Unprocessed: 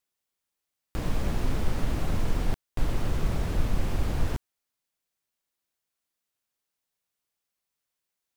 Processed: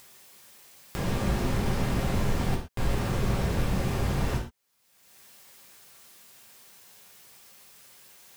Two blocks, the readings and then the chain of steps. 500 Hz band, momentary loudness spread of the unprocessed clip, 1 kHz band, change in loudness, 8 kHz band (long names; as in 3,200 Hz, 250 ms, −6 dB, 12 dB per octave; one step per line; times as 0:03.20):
+4.5 dB, 4 LU, +4.5 dB, +2.5 dB, +5.0 dB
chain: low-shelf EQ 61 Hz −7 dB
upward compression, threshold −35 dBFS
reverb whose tail is shaped and stops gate 150 ms falling, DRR −2.5 dB